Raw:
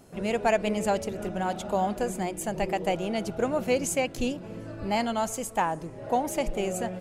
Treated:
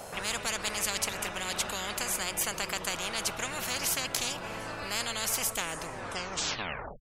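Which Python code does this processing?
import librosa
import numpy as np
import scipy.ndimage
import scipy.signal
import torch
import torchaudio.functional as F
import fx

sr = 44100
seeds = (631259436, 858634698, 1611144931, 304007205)

y = fx.tape_stop_end(x, sr, length_s=1.09)
y = fx.low_shelf_res(y, sr, hz=440.0, db=-9.5, q=3.0)
y = fx.spectral_comp(y, sr, ratio=10.0)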